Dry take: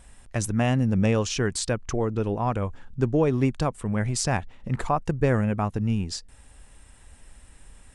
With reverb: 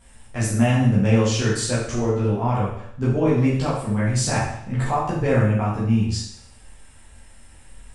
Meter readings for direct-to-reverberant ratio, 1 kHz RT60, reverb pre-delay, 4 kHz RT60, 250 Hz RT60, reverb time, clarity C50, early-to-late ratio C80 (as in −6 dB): −9.5 dB, 0.70 s, 9 ms, 0.70 s, 0.70 s, 0.70 s, 2.0 dB, 5.5 dB